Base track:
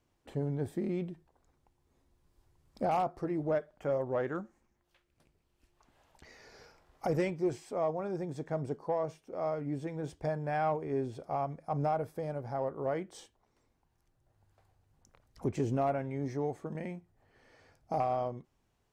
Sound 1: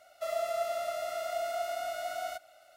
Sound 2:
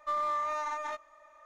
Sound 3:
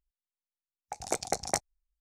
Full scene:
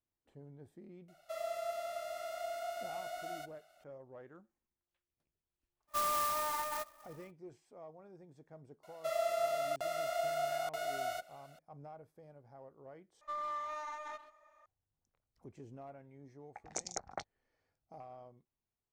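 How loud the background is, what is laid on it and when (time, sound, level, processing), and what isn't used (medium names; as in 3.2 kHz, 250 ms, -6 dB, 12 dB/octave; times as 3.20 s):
base track -20 dB
1.08 s: add 1 -7 dB
5.87 s: add 2 -2 dB, fades 0.10 s + sampling jitter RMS 0.061 ms
8.83 s: add 1 -1.5 dB + crackling interface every 0.93 s, samples 2048, zero, from 0.93 s
13.21 s: replace with 2 -8.5 dB + speakerphone echo 130 ms, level -12 dB
15.64 s: add 3 -13.5 dB + step-sequenced low-pass 4.5 Hz 750–6500 Hz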